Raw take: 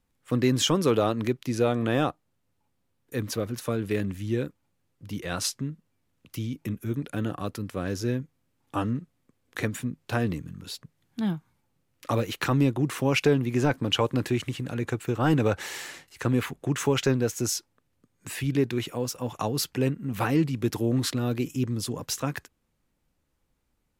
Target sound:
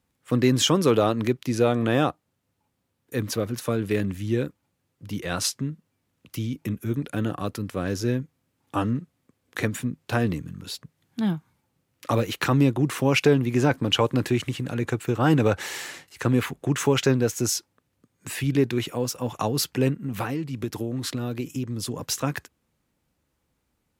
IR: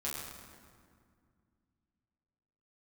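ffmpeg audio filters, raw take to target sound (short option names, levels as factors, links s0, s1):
-filter_complex "[0:a]highpass=57,asplit=3[s0][s1][s2];[s0]afade=t=out:st=19.96:d=0.02[s3];[s1]acompressor=threshold=0.0398:ratio=10,afade=t=in:st=19.96:d=0.02,afade=t=out:st=21.99:d=0.02[s4];[s2]afade=t=in:st=21.99:d=0.02[s5];[s3][s4][s5]amix=inputs=3:normalize=0,volume=1.41"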